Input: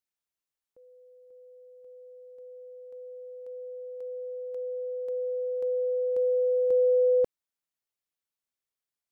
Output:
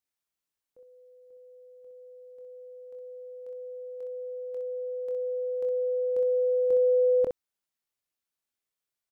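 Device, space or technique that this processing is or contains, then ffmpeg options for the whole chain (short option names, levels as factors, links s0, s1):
slapback doubling: -filter_complex "[0:a]asplit=3[s0][s1][s2];[s1]adelay=24,volume=0.447[s3];[s2]adelay=63,volume=0.501[s4];[s0][s3][s4]amix=inputs=3:normalize=0"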